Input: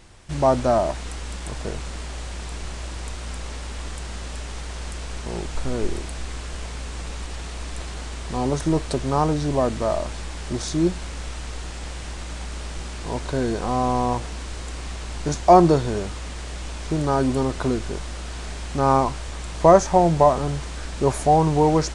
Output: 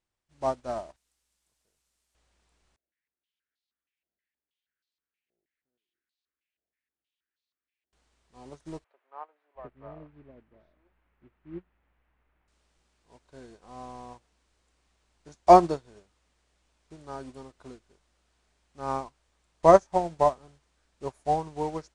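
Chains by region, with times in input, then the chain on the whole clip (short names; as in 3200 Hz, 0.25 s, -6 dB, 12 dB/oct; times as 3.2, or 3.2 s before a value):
0.96–2.15 delta modulation 64 kbps, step -37.5 dBFS + pre-emphasis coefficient 0.8
2.76–7.93 EQ curve 330 Hz 0 dB, 990 Hz -29 dB, 1600 Hz -8 dB + stepped band-pass 6.3 Hz 690–4100 Hz
8.84–12.48 LPF 2400 Hz 24 dB/oct + bands offset in time highs, lows 0.71 s, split 510 Hz
whole clip: low shelf 220 Hz -6.5 dB; upward expander 2.5:1, over -33 dBFS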